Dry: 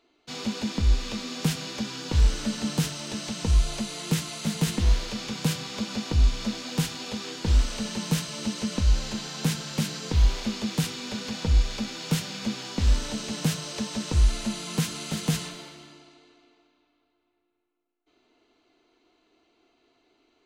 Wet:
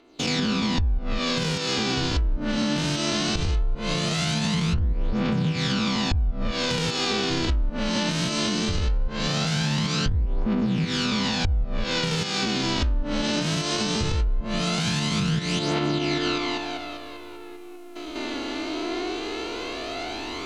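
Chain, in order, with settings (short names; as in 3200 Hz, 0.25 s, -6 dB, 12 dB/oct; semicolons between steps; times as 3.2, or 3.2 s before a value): stepped spectrum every 0.2 s; recorder AGC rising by 42 dB/s; phaser 0.19 Hz, delay 3.6 ms, feedback 49%; treble ducked by the level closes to 930 Hz, closed at -17 dBFS; in parallel at -2.5 dB: limiter -20.5 dBFS, peak gain reduction 10.5 dB; on the sum: compressor 10:1, threshold -21 dBFS, peak gain reduction 9.5 dB; gain +1.5 dB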